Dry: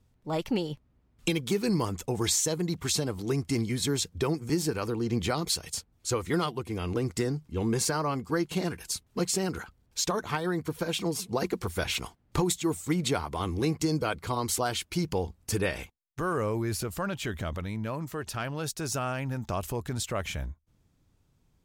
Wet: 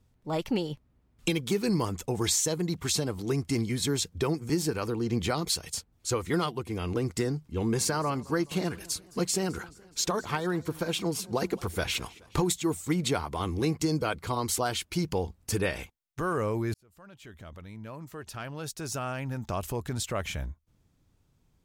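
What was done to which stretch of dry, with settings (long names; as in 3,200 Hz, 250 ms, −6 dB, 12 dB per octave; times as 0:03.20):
0:07.53–0:12.49: feedback echo with a swinging delay time 212 ms, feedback 56%, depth 131 cents, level −22.5 dB
0:16.74–0:19.75: fade in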